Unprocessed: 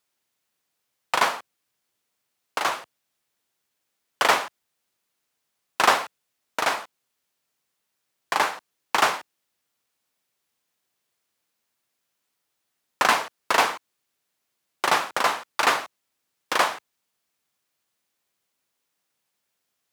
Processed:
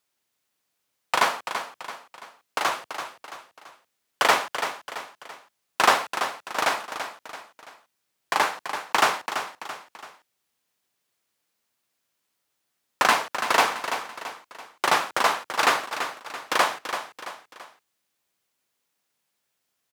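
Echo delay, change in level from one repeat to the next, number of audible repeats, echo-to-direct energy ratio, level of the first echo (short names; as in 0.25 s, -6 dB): 0.335 s, -7.0 dB, 3, -8.0 dB, -9.0 dB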